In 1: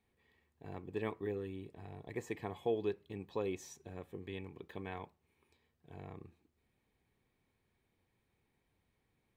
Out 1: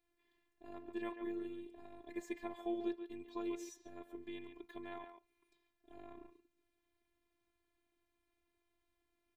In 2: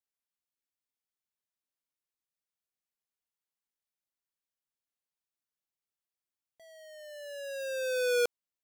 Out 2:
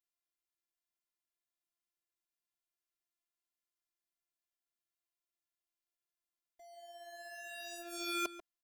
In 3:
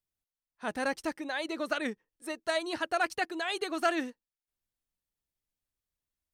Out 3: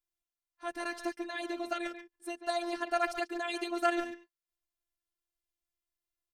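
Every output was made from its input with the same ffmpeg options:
-filter_complex "[0:a]asplit=2[a][b];[b]adelay=140,highpass=300,lowpass=3.4k,asoftclip=type=hard:threshold=-26.5dB,volume=-8dB[c];[a][c]amix=inputs=2:normalize=0,afftfilt=real='hypot(re,im)*cos(PI*b)':imag='0':win_size=512:overlap=0.75"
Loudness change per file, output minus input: -3.0, -9.0, -2.0 LU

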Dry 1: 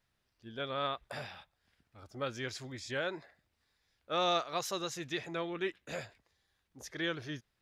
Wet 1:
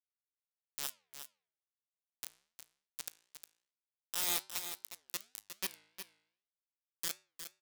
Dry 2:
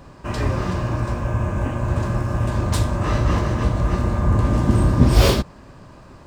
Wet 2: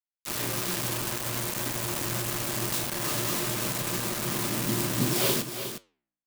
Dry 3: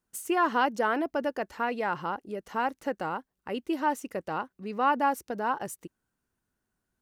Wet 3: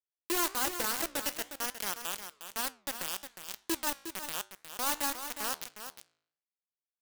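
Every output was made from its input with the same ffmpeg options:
-filter_complex "[0:a]aemphasis=mode=production:type=75fm,bandreject=f=153.3:t=h:w=4,bandreject=f=306.6:t=h:w=4,bandreject=f=459.9:t=h:w=4,adynamicequalizer=threshold=0.00631:dfrequency=350:dqfactor=4.6:tfrequency=350:tqfactor=4.6:attack=5:release=100:ratio=0.375:range=3.5:mode=boostabove:tftype=bell,afftfilt=real='re*between(b*sr/4096,110,9200)':imag='im*between(b*sr/4096,110,9200)':win_size=4096:overlap=0.75,acrossover=split=150|3800[a][b][c];[c]acompressor=threshold=-46dB:ratio=16[d];[a][b][d]amix=inputs=3:normalize=0,acrusher=bits=3:mix=0:aa=0.000001,flanger=delay=9.3:depth=9.2:regen=-84:speed=1.1:shape=sinusoidal,crystalizer=i=2.5:c=0,aecho=1:1:359:0.335,volume=-7dB"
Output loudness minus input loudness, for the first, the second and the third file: -3.0, -7.5, -4.0 LU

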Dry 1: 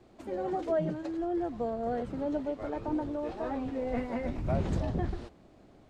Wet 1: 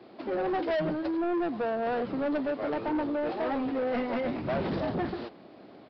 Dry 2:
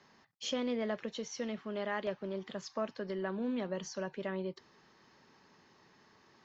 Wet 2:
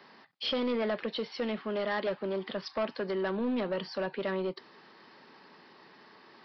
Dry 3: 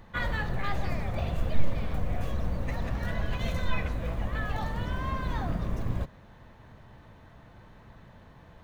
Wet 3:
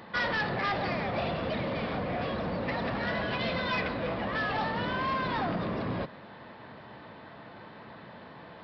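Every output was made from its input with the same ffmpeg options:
-af "highpass=220,aresample=11025,asoftclip=type=tanh:threshold=-34.5dB,aresample=44100,volume=9dB"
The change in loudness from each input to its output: +3.0, +5.0, +2.0 LU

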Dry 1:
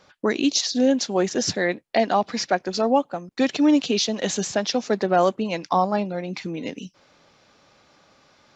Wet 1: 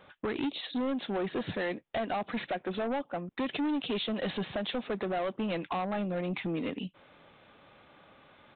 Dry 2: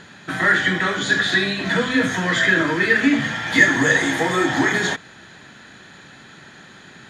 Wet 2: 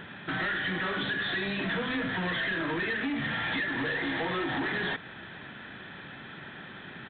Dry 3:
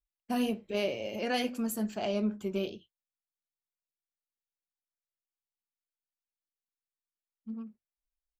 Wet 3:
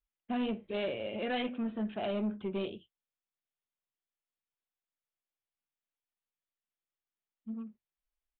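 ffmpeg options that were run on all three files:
-af "acompressor=threshold=-22dB:ratio=6,aresample=8000,asoftclip=type=tanh:threshold=-27.5dB,aresample=44100"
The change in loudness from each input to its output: -11.0, -12.5, -2.5 LU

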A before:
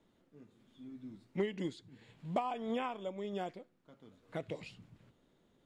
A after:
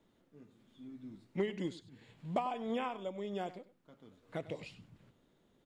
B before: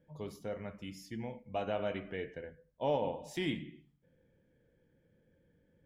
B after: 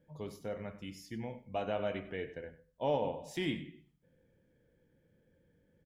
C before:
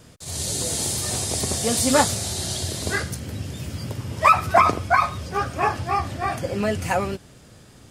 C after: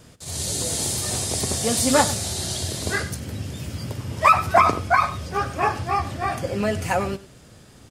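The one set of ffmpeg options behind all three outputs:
-af "aecho=1:1:97:0.15"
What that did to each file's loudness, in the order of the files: 0.0, 0.0, 0.0 LU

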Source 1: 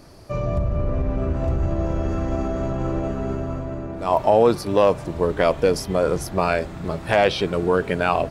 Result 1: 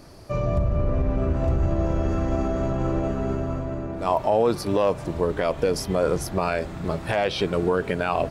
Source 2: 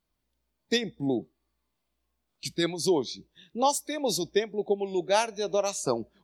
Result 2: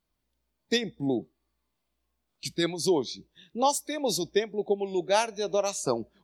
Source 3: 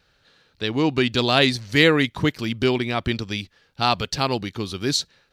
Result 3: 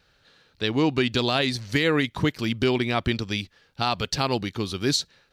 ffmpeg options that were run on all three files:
-af "alimiter=limit=-10.5dB:level=0:latency=1:release=156"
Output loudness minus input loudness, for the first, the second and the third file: -2.5, 0.0, -3.0 LU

